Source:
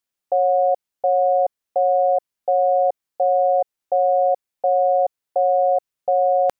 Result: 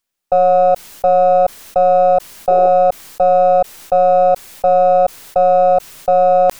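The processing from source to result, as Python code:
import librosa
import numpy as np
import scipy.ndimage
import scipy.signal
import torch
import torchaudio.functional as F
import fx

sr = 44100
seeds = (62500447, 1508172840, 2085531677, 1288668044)

y = np.where(x < 0.0, 10.0 ** (-3.0 / 20.0) * x, x)
y = fx.spec_paint(y, sr, seeds[0], shape='noise', start_s=2.48, length_s=0.21, low_hz=340.0, high_hz=820.0, level_db=-31.0)
y = fx.sustainer(y, sr, db_per_s=110.0)
y = y * librosa.db_to_amplitude(7.5)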